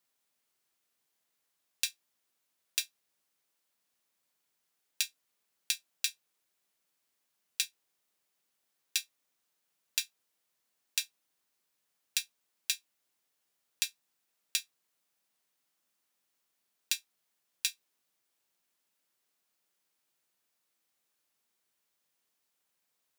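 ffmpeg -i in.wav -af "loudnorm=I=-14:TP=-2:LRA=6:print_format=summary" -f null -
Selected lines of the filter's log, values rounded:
Input Integrated:    -35.6 LUFS
Input True Peak:      -6.7 dBTP
Input LRA:             3.0 LU
Input Threshold:     -46.1 LUFS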